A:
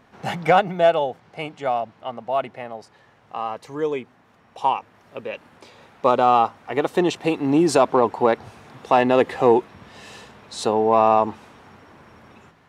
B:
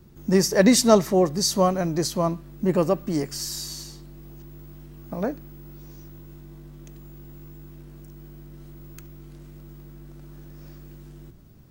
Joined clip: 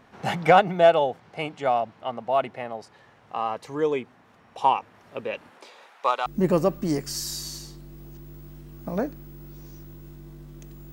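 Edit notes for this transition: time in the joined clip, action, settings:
A
5.5–6.26 HPF 280 Hz -> 1400 Hz
6.26 switch to B from 2.51 s

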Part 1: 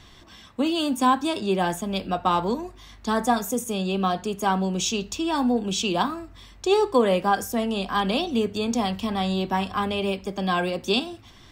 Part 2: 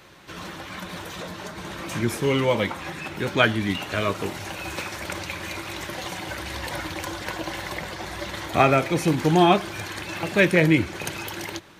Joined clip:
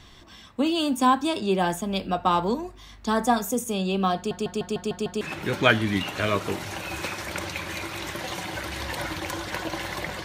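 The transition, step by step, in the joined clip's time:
part 1
4.16 stutter in place 0.15 s, 7 plays
5.21 switch to part 2 from 2.95 s

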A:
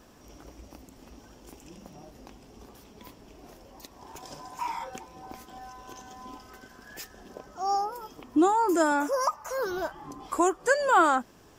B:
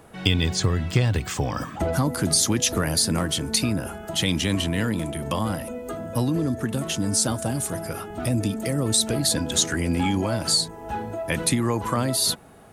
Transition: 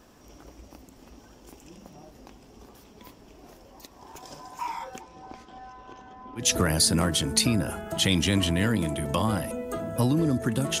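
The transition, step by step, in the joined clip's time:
A
5.01–6.49 LPF 7700 Hz -> 1700 Hz
6.42 switch to B from 2.59 s, crossfade 0.14 s

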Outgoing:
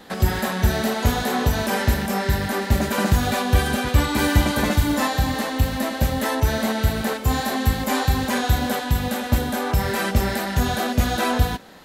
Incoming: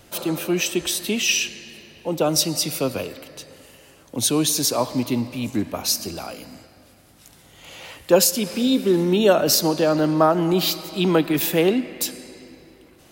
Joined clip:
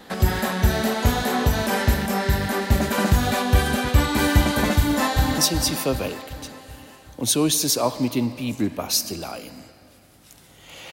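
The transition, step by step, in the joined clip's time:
outgoing
4.78–5.38 echo throw 0.38 s, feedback 55%, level -7 dB
5.38 switch to incoming from 2.33 s

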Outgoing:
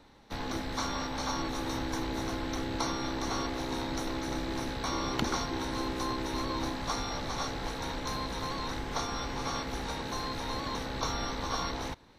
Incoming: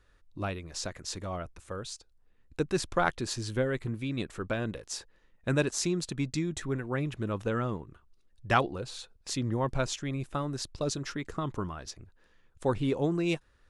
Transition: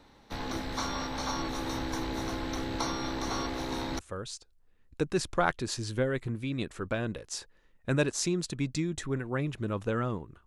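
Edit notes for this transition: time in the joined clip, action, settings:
outgoing
3.99 switch to incoming from 1.58 s

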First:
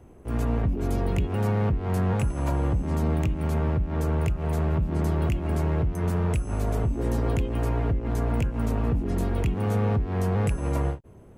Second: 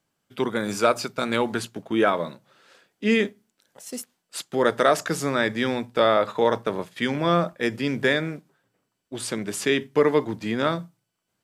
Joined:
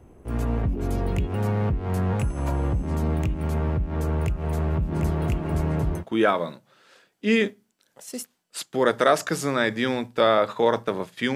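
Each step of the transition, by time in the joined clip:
first
4.18–6.04 echo 0.75 s -6 dB
6 switch to second from 1.79 s, crossfade 0.08 s

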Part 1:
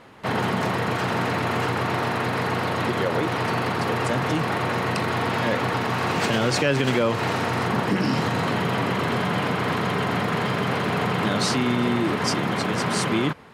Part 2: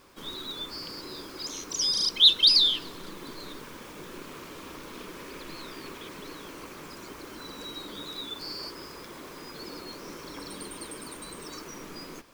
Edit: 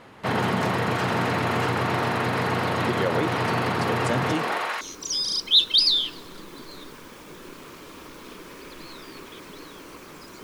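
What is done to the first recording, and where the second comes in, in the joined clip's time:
part 1
4.32–4.81 HPF 180 Hz -> 1300 Hz
4.81 switch to part 2 from 1.5 s

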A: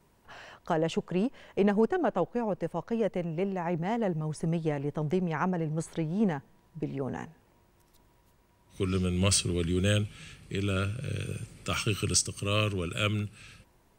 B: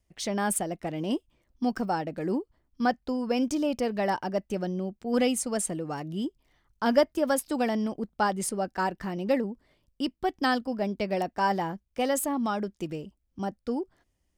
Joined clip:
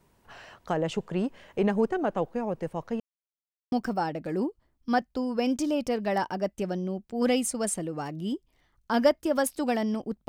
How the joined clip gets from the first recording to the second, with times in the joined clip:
A
3–3.72 mute
3.72 switch to B from 1.64 s

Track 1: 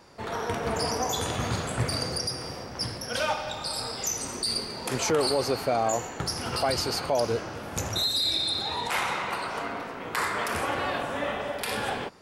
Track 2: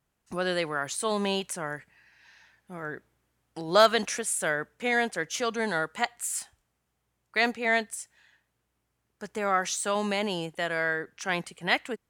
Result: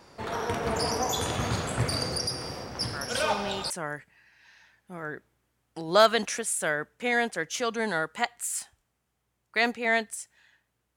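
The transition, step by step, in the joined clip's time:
track 1
2.93 add track 2 from 0.73 s 0.77 s -7 dB
3.7 switch to track 2 from 1.5 s

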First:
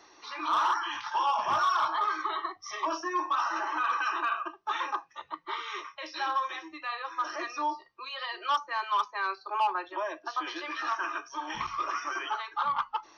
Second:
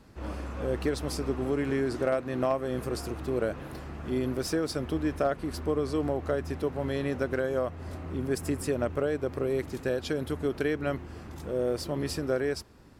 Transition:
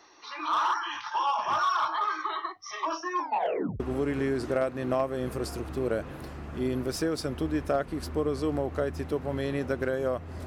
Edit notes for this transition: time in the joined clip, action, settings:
first
3.19 tape stop 0.61 s
3.8 switch to second from 1.31 s

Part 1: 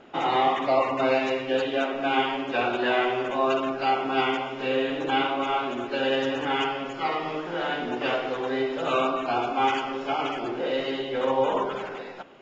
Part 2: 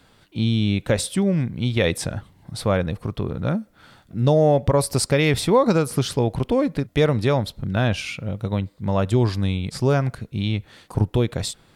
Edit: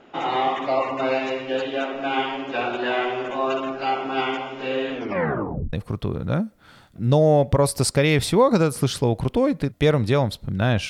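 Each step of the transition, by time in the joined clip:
part 1
4.92 tape stop 0.81 s
5.73 switch to part 2 from 2.88 s

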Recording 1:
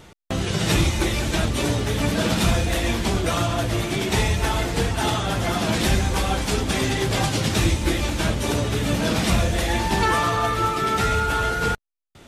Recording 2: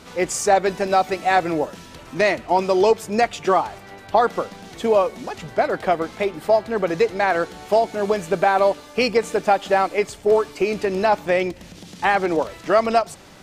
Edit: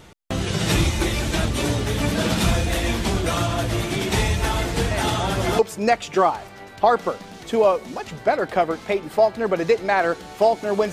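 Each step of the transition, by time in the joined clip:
recording 1
4.91 add recording 2 from 2.22 s 0.68 s -11 dB
5.59 switch to recording 2 from 2.9 s

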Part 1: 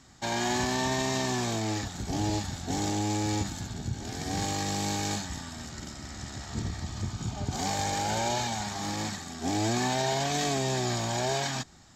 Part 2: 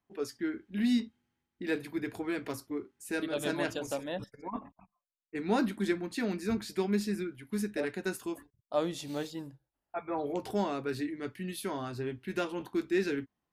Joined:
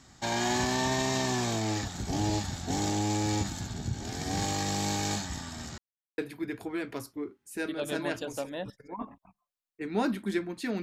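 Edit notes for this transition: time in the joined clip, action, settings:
part 1
5.78–6.18 mute
6.18 switch to part 2 from 1.72 s

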